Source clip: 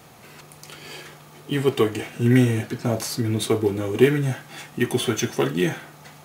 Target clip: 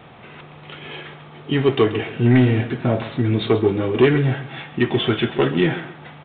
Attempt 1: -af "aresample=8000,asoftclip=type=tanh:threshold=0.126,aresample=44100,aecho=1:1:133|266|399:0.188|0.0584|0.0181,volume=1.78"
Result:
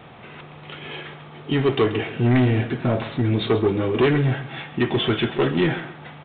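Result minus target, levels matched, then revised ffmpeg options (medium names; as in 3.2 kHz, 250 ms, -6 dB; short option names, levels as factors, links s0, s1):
saturation: distortion +6 dB
-af "aresample=8000,asoftclip=type=tanh:threshold=0.266,aresample=44100,aecho=1:1:133|266|399:0.188|0.0584|0.0181,volume=1.78"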